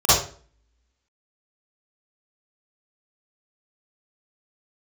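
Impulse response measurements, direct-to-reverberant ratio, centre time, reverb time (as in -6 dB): -16.0 dB, 68 ms, 0.45 s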